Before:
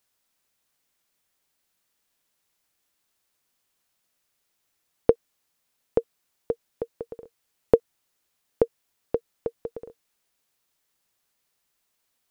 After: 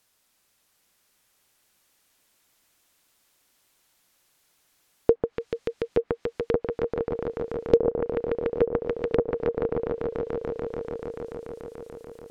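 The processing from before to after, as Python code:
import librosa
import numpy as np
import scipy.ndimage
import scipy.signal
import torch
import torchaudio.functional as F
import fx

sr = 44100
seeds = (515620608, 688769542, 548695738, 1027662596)

y = fx.echo_swell(x, sr, ms=145, loudest=5, wet_db=-11)
y = fx.transient(y, sr, attack_db=-9, sustain_db=4)
y = fx.env_lowpass_down(y, sr, base_hz=1300.0, full_db=-28.0)
y = y * librosa.db_to_amplitude(7.5)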